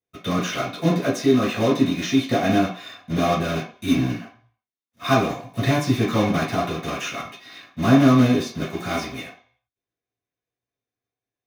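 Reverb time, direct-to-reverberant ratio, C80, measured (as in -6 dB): 0.45 s, -10.5 dB, 11.0 dB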